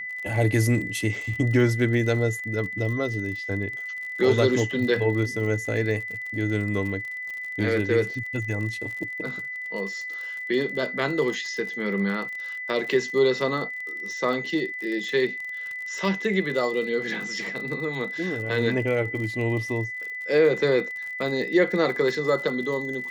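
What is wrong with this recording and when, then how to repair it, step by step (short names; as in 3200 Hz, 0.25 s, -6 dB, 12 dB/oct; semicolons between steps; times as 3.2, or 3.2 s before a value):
crackle 50/s -33 dBFS
tone 2000 Hz -31 dBFS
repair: de-click; notch 2000 Hz, Q 30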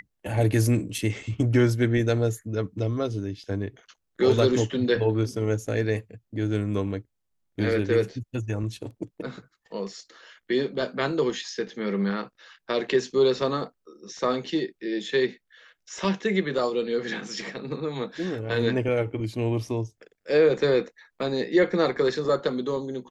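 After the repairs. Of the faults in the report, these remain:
none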